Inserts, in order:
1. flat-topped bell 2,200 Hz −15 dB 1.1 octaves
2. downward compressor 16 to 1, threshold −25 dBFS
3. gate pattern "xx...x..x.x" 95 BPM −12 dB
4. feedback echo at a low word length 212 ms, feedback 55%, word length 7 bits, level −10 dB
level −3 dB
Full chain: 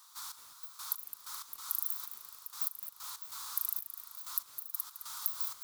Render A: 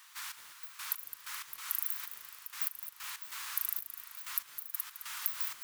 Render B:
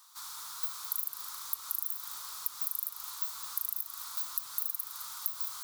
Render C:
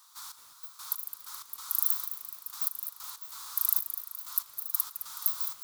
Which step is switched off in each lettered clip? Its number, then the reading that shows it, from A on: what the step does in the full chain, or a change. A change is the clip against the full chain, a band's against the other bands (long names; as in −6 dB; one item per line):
1, 2 kHz band +10.5 dB
3, change in crest factor −2.5 dB
2, average gain reduction 3.0 dB